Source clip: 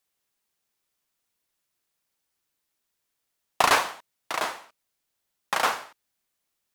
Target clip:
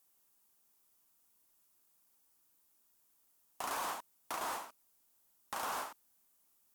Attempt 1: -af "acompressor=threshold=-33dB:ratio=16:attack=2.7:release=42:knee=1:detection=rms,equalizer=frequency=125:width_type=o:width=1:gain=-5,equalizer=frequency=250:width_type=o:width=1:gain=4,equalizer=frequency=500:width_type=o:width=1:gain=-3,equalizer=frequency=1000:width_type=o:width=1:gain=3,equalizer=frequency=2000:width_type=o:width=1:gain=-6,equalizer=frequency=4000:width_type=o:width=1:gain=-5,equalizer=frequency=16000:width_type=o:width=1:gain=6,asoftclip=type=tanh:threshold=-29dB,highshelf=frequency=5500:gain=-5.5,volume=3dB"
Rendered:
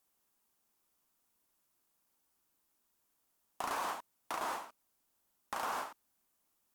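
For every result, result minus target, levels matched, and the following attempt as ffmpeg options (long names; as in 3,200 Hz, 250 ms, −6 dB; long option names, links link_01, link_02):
soft clipping: distortion −7 dB; 8,000 Hz band −4.5 dB
-af "acompressor=threshold=-33dB:ratio=16:attack=2.7:release=42:knee=1:detection=rms,equalizer=frequency=125:width_type=o:width=1:gain=-5,equalizer=frequency=250:width_type=o:width=1:gain=4,equalizer=frequency=500:width_type=o:width=1:gain=-3,equalizer=frequency=1000:width_type=o:width=1:gain=3,equalizer=frequency=2000:width_type=o:width=1:gain=-6,equalizer=frequency=4000:width_type=o:width=1:gain=-5,equalizer=frequency=16000:width_type=o:width=1:gain=6,asoftclip=type=tanh:threshold=-35.5dB,highshelf=frequency=5500:gain=-5.5,volume=3dB"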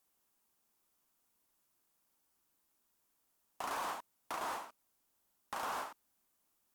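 8,000 Hz band −4.5 dB
-af "acompressor=threshold=-33dB:ratio=16:attack=2.7:release=42:knee=1:detection=rms,equalizer=frequency=125:width_type=o:width=1:gain=-5,equalizer=frequency=250:width_type=o:width=1:gain=4,equalizer=frequency=500:width_type=o:width=1:gain=-3,equalizer=frequency=1000:width_type=o:width=1:gain=3,equalizer=frequency=2000:width_type=o:width=1:gain=-6,equalizer=frequency=4000:width_type=o:width=1:gain=-5,equalizer=frequency=16000:width_type=o:width=1:gain=6,asoftclip=type=tanh:threshold=-35.5dB,highshelf=frequency=5500:gain=2,volume=3dB"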